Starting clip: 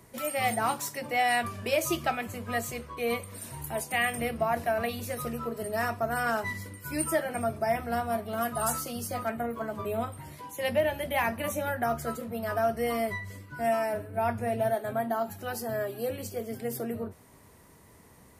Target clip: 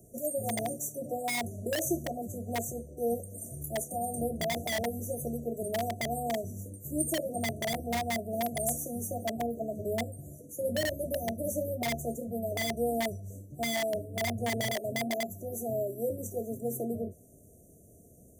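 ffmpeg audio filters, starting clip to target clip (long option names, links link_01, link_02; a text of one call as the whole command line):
ffmpeg -i in.wav -filter_complex "[0:a]afftfilt=real='re*(1-between(b*sr/4096,740,5800))':imag='im*(1-between(b*sr/4096,740,5800))':win_size=4096:overlap=0.75,acrossover=split=560|4700[link_01][link_02][link_03];[link_02]aeval=exprs='(mod(29.9*val(0)+1,2)-1)/29.9':channel_layout=same[link_04];[link_01][link_04][link_03]amix=inputs=3:normalize=0" out.wav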